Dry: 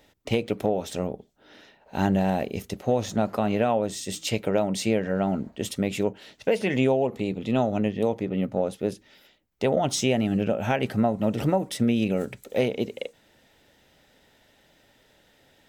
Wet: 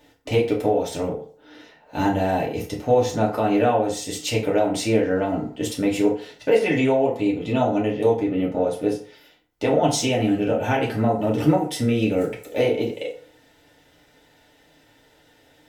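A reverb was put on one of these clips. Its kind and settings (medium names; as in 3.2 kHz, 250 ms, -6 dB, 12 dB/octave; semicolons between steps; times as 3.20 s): FDN reverb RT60 0.47 s, low-frequency decay 0.75×, high-frequency decay 0.65×, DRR -3.5 dB; trim -1 dB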